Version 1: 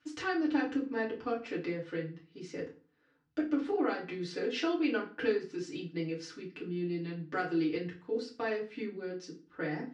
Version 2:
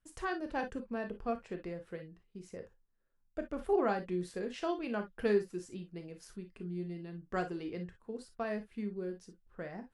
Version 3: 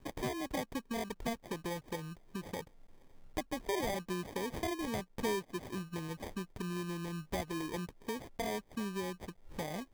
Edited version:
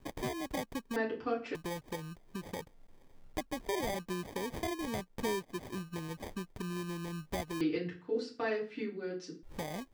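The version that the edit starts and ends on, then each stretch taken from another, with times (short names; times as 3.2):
3
0.96–1.55 from 1
7.61–9.43 from 1
not used: 2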